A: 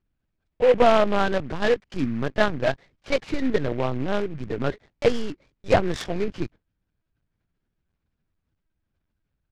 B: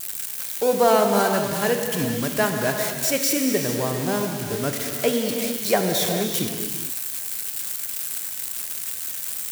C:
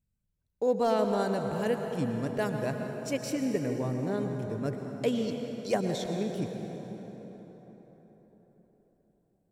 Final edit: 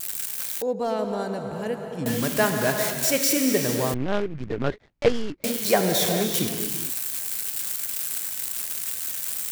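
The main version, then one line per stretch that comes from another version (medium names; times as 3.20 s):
B
0.62–2.06 s: from C
3.94–5.44 s: from A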